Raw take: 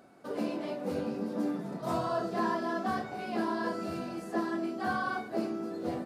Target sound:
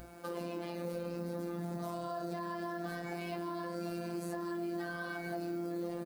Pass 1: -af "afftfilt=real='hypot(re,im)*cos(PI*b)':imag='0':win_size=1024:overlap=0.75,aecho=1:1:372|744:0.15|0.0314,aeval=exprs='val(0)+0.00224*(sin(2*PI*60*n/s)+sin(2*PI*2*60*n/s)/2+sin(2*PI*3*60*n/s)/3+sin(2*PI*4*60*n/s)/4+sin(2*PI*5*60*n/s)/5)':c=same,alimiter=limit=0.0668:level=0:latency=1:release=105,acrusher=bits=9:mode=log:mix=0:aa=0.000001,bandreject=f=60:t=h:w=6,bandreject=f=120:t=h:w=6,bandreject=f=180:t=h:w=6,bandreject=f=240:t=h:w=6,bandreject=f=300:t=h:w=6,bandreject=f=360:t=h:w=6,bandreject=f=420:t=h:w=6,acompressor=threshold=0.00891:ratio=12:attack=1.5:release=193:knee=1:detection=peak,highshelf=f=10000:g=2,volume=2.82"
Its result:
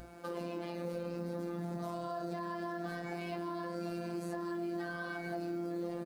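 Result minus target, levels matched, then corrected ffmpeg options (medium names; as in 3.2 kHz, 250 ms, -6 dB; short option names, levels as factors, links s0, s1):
8 kHz band -3.5 dB
-af "afftfilt=real='hypot(re,im)*cos(PI*b)':imag='0':win_size=1024:overlap=0.75,aecho=1:1:372|744:0.15|0.0314,aeval=exprs='val(0)+0.00224*(sin(2*PI*60*n/s)+sin(2*PI*2*60*n/s)/2+sin(2*PI*3*60*n/s)/3+sin(2*PI*4*60*n/s)/4+sin(2*PI*5*60*n/s)/5)':c=same,alimiter=limit=0.0668:level=0:latency=1:release=105,acrusher=bits=9:mode=log:mix=0:aa=0.000001,bandreject=f=60:t=h:w=6,bandreject=f=120:t=h:w=6,bandreject=f=180:t=h:w=6,bandreject=f=240:t=h:w=6,bandreject=f=300:t=h:w=6,bandreject=f=360:t=h:w=6,bandreject=f=420:t=h:w=6,acompressor=threshold=0.00891:ratio=12:attack=1.5:release=193:knee=1:detection=peak,highshelf=f=10000:g=11.5,volume=2.82"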